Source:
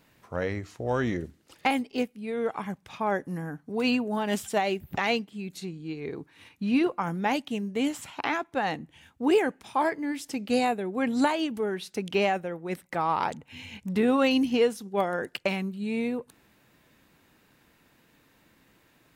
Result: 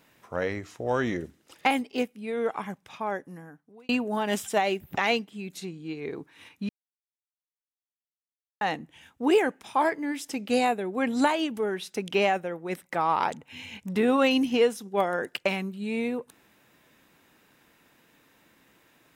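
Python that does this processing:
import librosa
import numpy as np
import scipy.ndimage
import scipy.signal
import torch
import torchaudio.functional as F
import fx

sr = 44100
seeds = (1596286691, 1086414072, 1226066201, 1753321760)

y = fx.edit(x, sr, fx.fade_out_span(start_s=2.49, length_s=1.4),
    fx.silence(start_s=6.69, length_s=1.92), tone=tone)
y = fx.low_shelf(y, sr, hz=150.0, db=-9.5)
y = fx.notch(y, sr, hz=4400.0, q=14.0)
y = F.gain(torch.from_numpy(y), 2.0).numpy()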